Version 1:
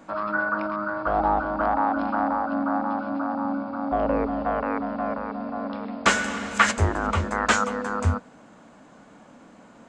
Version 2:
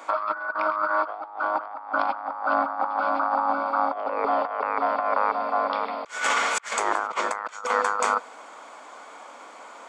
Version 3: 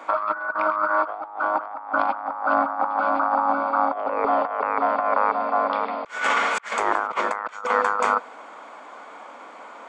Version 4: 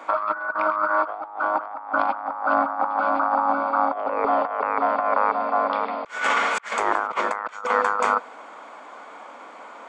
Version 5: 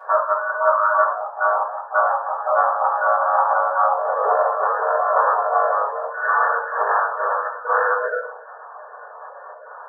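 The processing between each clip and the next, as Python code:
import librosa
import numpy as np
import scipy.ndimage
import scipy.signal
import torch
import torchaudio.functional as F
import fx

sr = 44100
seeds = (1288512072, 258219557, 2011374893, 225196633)

y1 = scipy.signal.sosfilt(scipy.signal.butter(4, 470.0, 'highpass', fs=sr, output='sos'), x)
y1 = y1 + 0.37 * np.pad(y1, (int(0.9 * sr / 1000.0), 0))[:len(y1)]
y1 = fx.over_compress(y1, sr, threshold_db=-31.0, ratio=-0.5)
y1 = y1 * 10.0 ** (5.5 / 20.0)
y2 = fx.bass_treble(y1, sr, bass_db=4, treble_db=-11)
y2 = y2 * 10.0 ** (2.5 / 20.0)
y3 = y2
y4 = fx.spec_dropout(y3, sr, seeds[0], share_pct=20)
y4 = fx.brickwall_bandpass(y4, sr, low_hz=420.0, high_hz=1800.0)
y4 = fx.room_shoebox(y4, sr, seeds[1], volume_m3=60.0, walls='mixed', distance_m=2.5)
y4 = y4 * 10.0 ** (-6.5 / 20.0)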